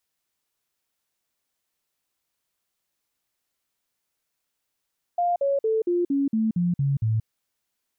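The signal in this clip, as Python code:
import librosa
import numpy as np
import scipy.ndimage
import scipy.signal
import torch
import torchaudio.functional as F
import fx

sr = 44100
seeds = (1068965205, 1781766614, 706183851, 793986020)

y = fx.stepped_sweep(sr, from_hz=701.0, direction='down', per_octave=3, tones=9, dwell_s=0.18, gap_s=0.05, level_db=-19.5)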